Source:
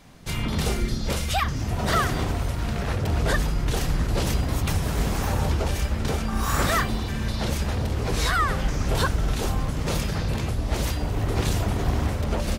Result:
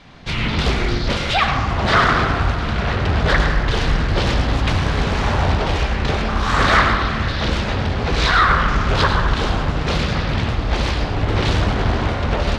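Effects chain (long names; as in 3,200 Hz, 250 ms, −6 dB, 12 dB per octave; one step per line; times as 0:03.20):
low-pass with resonance 3,900 Hz, resonance Q 1.5
parametric band 1,500 Hz +3 dB 1.7 octaves
delay with a band-pass on its return 72 ms, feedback 78%, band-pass 950 Hz, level −8 dB
on a send at −6 dB: convolution reverb RT60 0.55 s, pre-delay 88 ms
on the sum: highs frequency-modulated by the lows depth 0.54 ms
level +4.5 dB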